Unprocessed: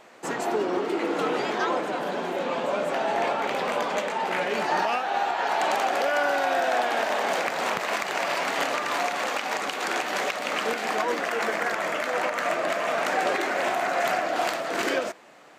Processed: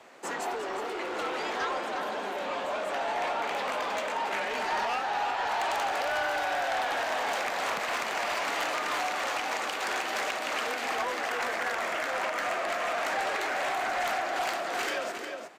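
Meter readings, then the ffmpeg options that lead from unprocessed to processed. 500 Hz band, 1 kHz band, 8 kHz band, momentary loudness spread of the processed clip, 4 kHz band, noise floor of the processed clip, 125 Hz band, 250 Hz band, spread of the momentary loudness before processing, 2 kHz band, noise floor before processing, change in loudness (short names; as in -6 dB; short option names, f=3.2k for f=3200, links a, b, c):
-6.5 dB, -4.0 dB, -3.0 dB, 4 LU, -2.5 dB, -35 dBFS, n/a, -9.5 dB, 4 LU, -3.0 dB, -33 dBFS, -4.5 dB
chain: -filter_complex "[0:a]aecho=1:1:359:0.355,afreqshift=24,aeval=exprs='0.266*(cos(1*acos(clip(val(0)/0.266,-1,1)))-cos(1*PI/2))+0.0473*(cos(5*acos(clip(val(0)/0.266,-1,1)))-cos(5*PI/2))':c=same,acrossover=split=630[a][b];[a]alimiter=level_in=4dB:limit=-24dB:level=0:latency=1,volume=-4dB[c];[c][b]amix=inputs=2:normalize=0,volume=-7.5dB"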